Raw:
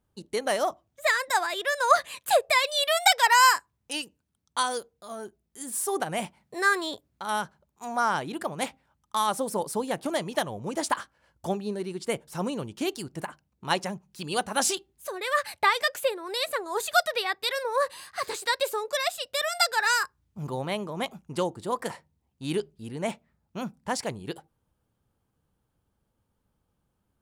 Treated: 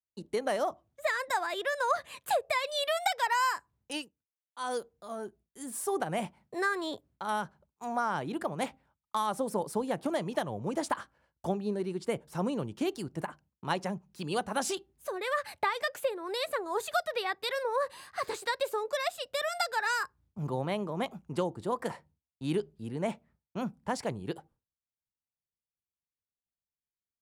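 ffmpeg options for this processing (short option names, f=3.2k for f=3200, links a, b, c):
-filter_complex "[0:a]asplit=3[a][b][c];[a]atrim=end=4.11,asetpts=PTS-STARTPTS,afade=t=out:st=3.97:d=0.14:silence=0.177828[d];[b]atrim=start=4.11:end=4.59,asetpts=PTS-STARTPTS,volume=-15dB[e];[c]atrim=start=4.59,asetpts=PTS-STARTPTS,afade=t=in:d=0.14:silence=0.177828[f];[d][e][f]concat=n=3:v=0:a=1,agate=range=-33dB:threshold=-55dB:ratio=3:detection=peak,highshelf=f=2.1k:g=-8,acrossover=split=170[g][h];[h]acompressor=threshold=-27dB:ratio=3[i];[g][i]amix=inputs=2:normalize=0"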